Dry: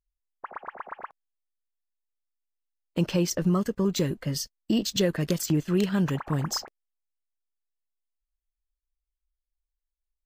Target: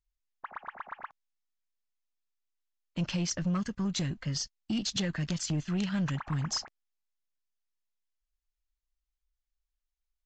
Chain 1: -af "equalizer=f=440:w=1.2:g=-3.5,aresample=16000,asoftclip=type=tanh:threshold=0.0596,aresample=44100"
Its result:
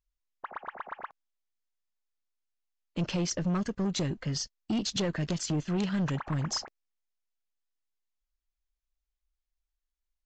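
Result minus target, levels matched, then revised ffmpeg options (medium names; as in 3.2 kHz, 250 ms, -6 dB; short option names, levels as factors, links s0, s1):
500 Hz band +6.0 dB
-af "equalizer=f=440:w=1.2:g=-14,aresample=16000,asoftclip=type=tanh:threshold=0.0596,aresample=44100"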